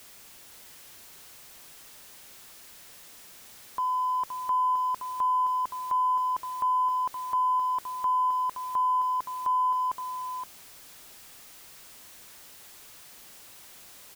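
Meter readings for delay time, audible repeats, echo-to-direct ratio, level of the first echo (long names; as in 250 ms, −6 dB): 520 ms, 1, −7.5 dB, −7.5 dB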